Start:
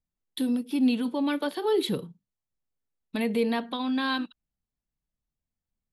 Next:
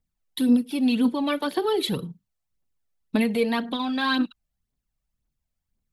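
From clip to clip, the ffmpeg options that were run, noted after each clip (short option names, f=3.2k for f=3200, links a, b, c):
-af "aphaser=in_gain=1:out_gain=1:delay=1.8:decay=0.51:speed=1.9:type=triangular,volume=3dB"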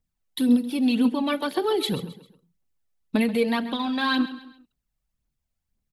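-af "aecho=1:1:133|266|399:0.178|0.0676|0.0257"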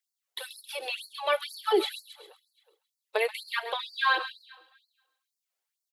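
-filter_complex "[0:a]acrossover=split=3000[a][b];[b]acompressor=threshold=-41dB:ratio=4:attack=1:release=60[c];[a][c]amix=inputs=2:normalize=0,aecho=1:1:371|742:0.0708|0.0184,afftfilt=real='re*gte(b*sr/1024,320*pow(4200/320,0.5+0.5*sin(2*PI*2.1*pts/sr)))':imag='im*gte(b*sr/1024,320*pow(4200/320,0.5+0.5*sin(2*PI*2.1*pts/sr)))':win_size=1024:overlap=0.75,volume=2.5dB"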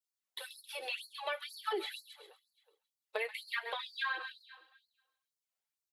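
-af "adynamicequalizer=threshold=0.00631:dfrequency=1900:dqfactor=1.7:tfrequency=1900:tqfactor=1.7:attack=5:release=100:ratio=0.375:range=4:mode=boostabove:tftype=bell,acompressor=threshold=-26dB:ratio=10,flanger=delay=6.3:depth=1.8:regen=-48:speed=1.9:shape=sinusoidal,volume=-2.5dB"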